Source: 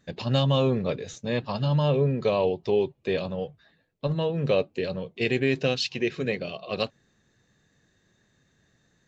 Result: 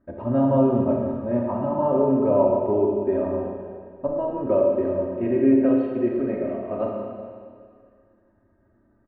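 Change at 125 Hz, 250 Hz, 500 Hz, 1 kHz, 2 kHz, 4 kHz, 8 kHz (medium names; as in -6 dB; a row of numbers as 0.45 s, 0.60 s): -4.0 dB, +8.5 dB, +5.0 dB, +5.0 dB, -12.5 dB, under -25 dB, no reading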